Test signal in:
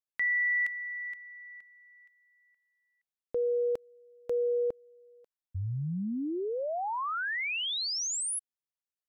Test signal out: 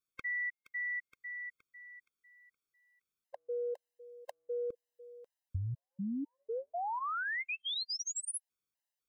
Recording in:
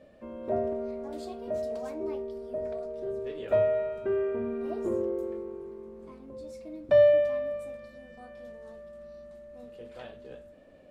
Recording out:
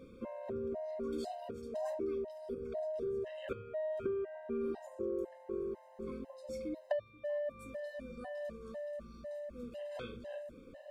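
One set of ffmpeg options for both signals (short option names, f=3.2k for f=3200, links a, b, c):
-af "acompressor=threshold=-43dB:ratio=12:attack=90:release=45:knee=6:detection=rms,afftfilt=real='re*gt(sin(2*PI*2*pts/sr)*(1-2*mod(floor(b*sr/1024/530),2)),0)':imag='im*gt(sin(2*PI*2*pts/sr)*(1-2*mod(floor(b*sr/1024/530),2)),0)':win_size=1024:overlap=0.75,volume=5.5dB"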